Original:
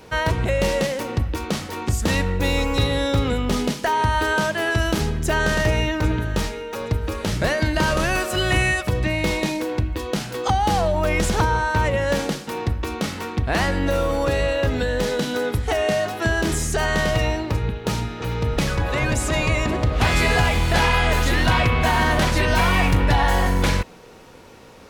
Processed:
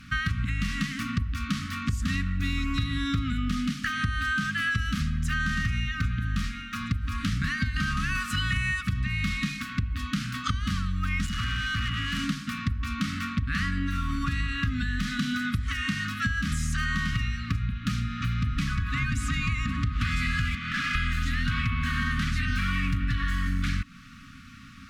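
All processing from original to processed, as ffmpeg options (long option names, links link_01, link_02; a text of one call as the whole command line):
ffmpeg -i in.wav -filter_complex "[0:a]asettb=1/sr,asplit=3[link_01][link_02][link_03];[link_01]atrim=end=11.264[link_04];[link_02]atrim=start=11.26:end=12.24,asetpts=PTS-STARTPTS,afade=type=in:duration=0.004:curve=qsin,afade=type=out:start_time=0.976:duration=0.004:curve=qsin,asoftclip=type=hard:threshold=-24.5dB,aeval=exprs='val(0)+0.0178*sin(2*PI*2900*n/s)':channel_layout=same[link_05];[link_03]atrim=start=12.236[link_06];[link_04][link_05]acrossfade=duration=0.004:curve1=hsin:curve2=qsin[link_07];[link_07][link_06]acrossfade=duration=0.004:curve1=qsin:curve2=hsin,asettb=1/sr,asplit=3[link_08][link_09][link_10];[link_08]atrim=end=20.554[link_11];[link_09]atrim=start=20.55:end=20.95,asetpts=PTS-STARTPTS,afade=type=in:duration=0.004:curve=qsin,afade=type=out:start_time=0.396:duration=0.004:curve=qsin,highpass=250,lowpass=2800,volume=23dB,asoftclip=hard,volume=-23dB[link_12];[link_10]atrim=start=20.946[link_13];[link_11][link_12]acrossfade=duration=0.004:curve1=hsin:curve2=qsin[link_14];[link_14][link_13]acrossfade=duration=0.004:curve1=qsin:curve2=hsin,lowpass=frequency=3200:poles=1,afftfilt=real='re*(1-between(b*sr/4096,290,1100))':imag='im*(1-between(b*sr/4096,290,1100))':win_size=4096:overlap=0.75,acompressor=threshold=-27dB:ratio=5,volume=2.5dB" out.wav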